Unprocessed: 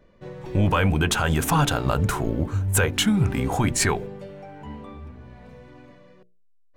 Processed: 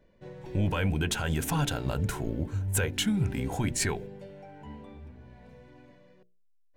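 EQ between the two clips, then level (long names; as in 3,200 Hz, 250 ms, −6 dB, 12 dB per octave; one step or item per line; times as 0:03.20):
notch filter 1,200 Hz, Q 5.5
dynamic equaliser 900 Hz, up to −4 dB, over −38 dBFS, Q 0.97
−6.5 dB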